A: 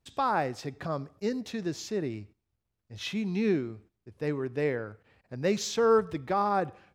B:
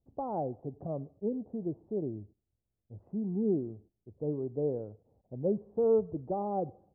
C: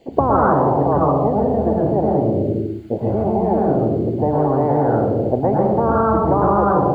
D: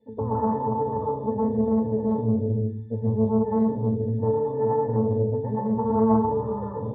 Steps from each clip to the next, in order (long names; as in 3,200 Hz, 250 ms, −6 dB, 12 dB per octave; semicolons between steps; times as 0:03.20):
Butterworth low-pass 760 Hz 36 dB per octave; level −2.5 dB
convolution reverb RT60 0.85 s, pre-delay 110 ms, DRR −3 dB; every bin compressed towards the loudest bin 10 to 1
resonances in every octave A, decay 0.29 s; highs frequency-modulated by the lows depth 0.21 ms; level +4.5 dB